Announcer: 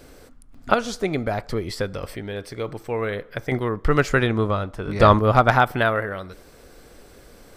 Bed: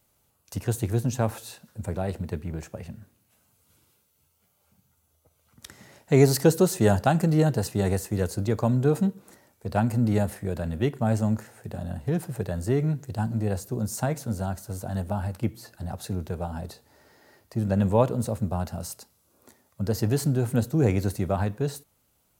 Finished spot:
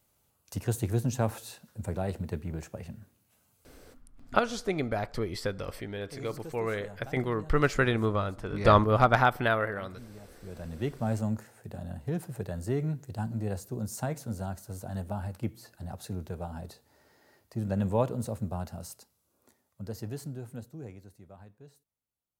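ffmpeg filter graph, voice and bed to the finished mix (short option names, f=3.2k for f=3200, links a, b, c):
-filter_complex "[0:a]adelay=3650,volume=-6dB[a];[1:a]volume=16.5dB,afade=t=out:st=3.78:d=0.25:silence=0.0749894,afade=t=in:st=10.27:d=0.67:silence=0.105925,afade=t=out:st=18.43:d=2.59:silence=0.105925[b];[a][b]amix=inputs=2:normalize=0"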